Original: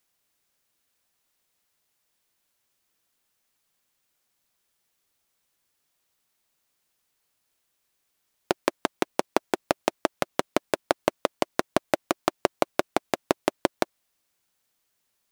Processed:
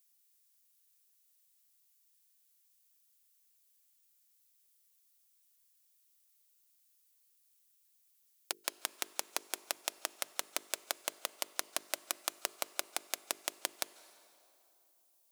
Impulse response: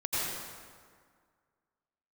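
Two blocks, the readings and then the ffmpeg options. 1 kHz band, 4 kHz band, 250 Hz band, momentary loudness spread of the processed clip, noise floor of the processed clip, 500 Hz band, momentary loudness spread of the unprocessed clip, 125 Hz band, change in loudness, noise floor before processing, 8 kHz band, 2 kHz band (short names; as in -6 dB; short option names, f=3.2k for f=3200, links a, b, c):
-16.0 dB, -4.0 dB, -26.5 dB, 3 LU, -72 dBFS, -21.0 dB, 3 LU, under -30 dB, -10.0 dB, -76 dBFS, +1.5 dB, -10.0 dB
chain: -filter_complex "[0:a]aderivative,bandreject=f=50:t=h:w=6,bandreject=f=100:t=h:w=6,bandreject=f=150:t=h:w=6,bandreject=f=200:t=h:w=6,bandreject=f=250:t=h:w=6,bandreject=f=300:t=h:w=6,bandreject=f=350:t=h:w=6,bandreject=f=400:t=h:w=6,bandreject=f=450:t=h:w=6,asplit=2[a][b];[1:a]atrim=start_sample=2205,asetrate=26019,aresample=44100[c];[b][c]afir=irnorm=-1:irlink=0,volume=-29dB[d];[a][d]amix=inputs=2:normalize=0,volume=1dB"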